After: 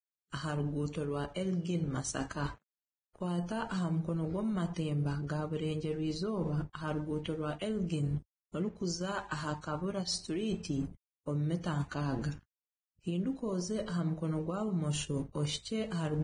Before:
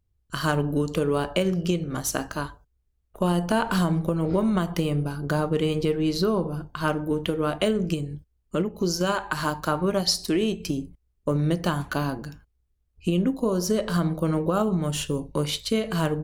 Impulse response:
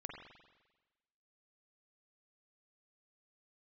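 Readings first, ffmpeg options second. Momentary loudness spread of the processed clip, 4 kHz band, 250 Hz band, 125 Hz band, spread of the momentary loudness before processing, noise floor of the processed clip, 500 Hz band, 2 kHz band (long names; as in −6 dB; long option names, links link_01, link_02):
4 LU, −11.5 dB, −9.5 dB, −7.0 dB, 7 LU, below −85 dBFS, −12.0 dB, −12.0 dB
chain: -af "aeval=exprs='sgn(val(0))*max(abs(val(0))-0.00266,0)':channel_layout=same,areverse,acompressor=threshold=-34dB:ratio=10,areverse,equalizer=frequency=120:width_type=o:width=2.1:gain=5.5" -ar 22050 -c:a libvorbis -b:a 16k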